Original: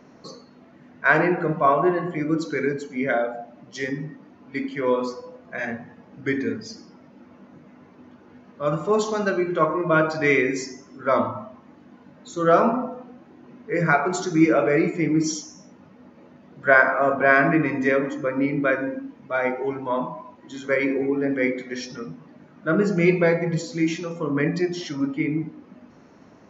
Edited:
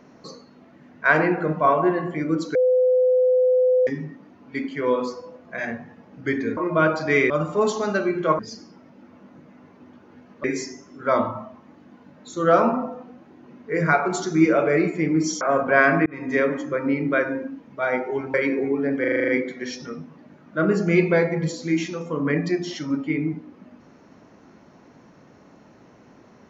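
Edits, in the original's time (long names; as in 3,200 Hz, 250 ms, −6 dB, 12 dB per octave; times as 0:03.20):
0:02.55–0:03.87: beep over 507 Hz −14.5 dBFS
0:06.57–0:08.62: swap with 0:09.71–0:10.44
0:15.41–0:16.93: remove
0:17.58–0:17.91: fade in
0:19.86–0:20.72: remove
0:21.38: stutter 0.04 s, 8 plays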